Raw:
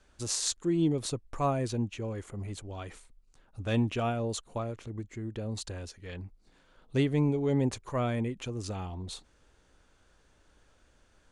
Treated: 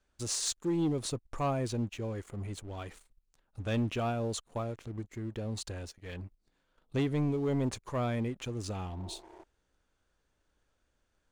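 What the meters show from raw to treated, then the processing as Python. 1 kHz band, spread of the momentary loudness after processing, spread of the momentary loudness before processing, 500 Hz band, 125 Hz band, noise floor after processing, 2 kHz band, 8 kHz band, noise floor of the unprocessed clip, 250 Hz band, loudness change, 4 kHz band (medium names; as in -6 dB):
-2.0 dB, 13 LU, 15 LU, -2.5 dB, -2.5 dB, -78 dBFS, -2.0 dB, -1.5 dB, -65 dBFS, -2.5 dB, -2.5 dB, -1.5 dB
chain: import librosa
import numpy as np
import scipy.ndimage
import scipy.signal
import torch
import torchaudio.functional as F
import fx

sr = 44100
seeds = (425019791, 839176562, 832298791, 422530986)

y = fx.spec_repair(x, sr, seeds[0], start_s=9.02, length_s=0.39, low_hz=320.0, high_hz=2300.0, source='before')
y = fx.leveller(y, sr, passes=2)
y = y * 10.0 ** (-8.5 / 20.0)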